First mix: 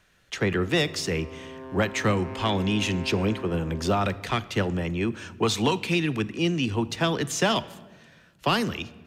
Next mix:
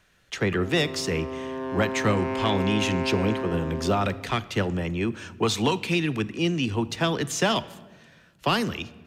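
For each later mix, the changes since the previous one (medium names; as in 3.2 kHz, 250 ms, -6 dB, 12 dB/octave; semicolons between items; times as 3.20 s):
background +9.0 dB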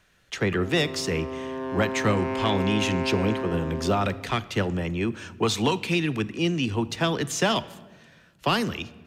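no change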